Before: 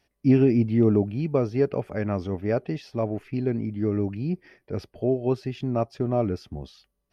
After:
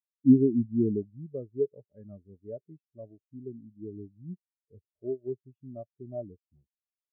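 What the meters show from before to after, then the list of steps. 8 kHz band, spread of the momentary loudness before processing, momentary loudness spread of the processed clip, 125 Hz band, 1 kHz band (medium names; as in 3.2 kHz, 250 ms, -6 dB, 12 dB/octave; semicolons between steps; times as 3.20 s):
no reading, 14 LU, 23 LU, -11.0 dB, under -20 dB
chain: spectral contrast expander 2.5:1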